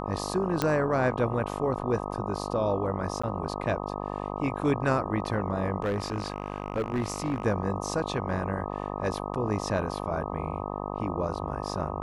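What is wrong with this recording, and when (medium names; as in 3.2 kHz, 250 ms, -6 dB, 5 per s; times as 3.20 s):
buzz 50 Hz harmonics 25 -34 dBFS
0.62 s: pop -10 dBFS
3.22–3.23 s: dropout 15 ms
5.82–7.44 s: clipped -23.5 dBFS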